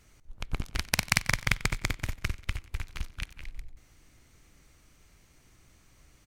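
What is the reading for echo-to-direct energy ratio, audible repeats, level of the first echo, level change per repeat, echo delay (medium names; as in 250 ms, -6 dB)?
-18.0 dB, 3, -19.0 dB, -6.5 dB, 92 ms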